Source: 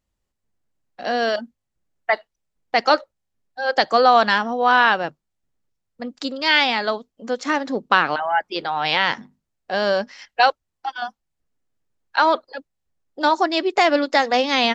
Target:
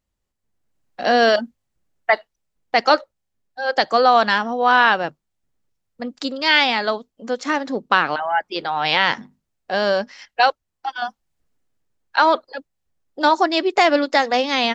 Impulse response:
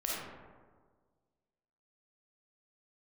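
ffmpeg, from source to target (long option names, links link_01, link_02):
-af "dynaudnorm=framelen=130:gausssize=11:maxgain=11.5dB,volume=-1dB"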